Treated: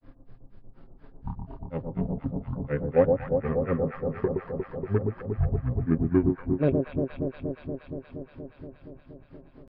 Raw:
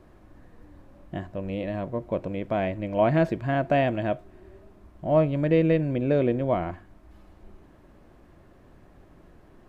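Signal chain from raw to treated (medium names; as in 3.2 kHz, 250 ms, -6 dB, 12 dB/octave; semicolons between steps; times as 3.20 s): granulator 149 ms, grains 4.1 per s, spray 565 ms, pitch spread up and down by 12 st; comb 4.2 ms, depth 46%; in parallel at -10 dB: hard clipper -19 dBFS, distortion -12 dB; on the sum: pitch shift -10 st; resampled via 11.025 kHz; on a send: echo whose repeats swap between lows and highs 118 ms, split 910 Hz, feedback 88%, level -4 dB; on the sum: low-pass that closes with the level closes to 2.6 kHz, closed at -23 dBFS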